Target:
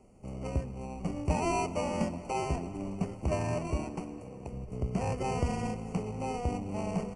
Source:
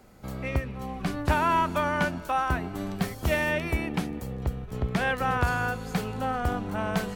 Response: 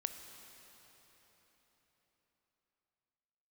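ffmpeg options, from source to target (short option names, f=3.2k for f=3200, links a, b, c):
-filter_complex "[0:a]asettb=1/sr,asplit=3[a][b][c];[a]atrim=end=3.844[d];[b]atrim=start=3.84:end=4.52,asetpts=PTS-STARTPTS,afade=t=in:d=0.004:c=qsin,afade=t=out:st=0.676:d=0.004:c=qsin,highpass=f=330:p=1[e];[c]atrim=start=4.516[f];[d][e]acrossfade=d=0.004:c1=hsin:c2=qsin[g];[g][f]acrossfade=d=0.004:c1=qsin:c2=hsin,acrossover=split=850|6400[h][i][j];[i]acrusher=samples=26:mix=1:aa=0.000001[k];[j]acompressor=threshold=-58dB:ratio=6[l];[h][k][l]amix=inputs=3:normalize=0,asuperstop=centerf=3700:order=12:qfactor=2.9,asplit=2[m][n];[1:a]atrim=start_sample=2205[o];[n][o]afir=irnorm=-1:irlink=0,volume=-2.5dB[p];[m][p]amix=inputs=2:normalize=0,aresample=22050,aresample=44100,volume=-8.5dB"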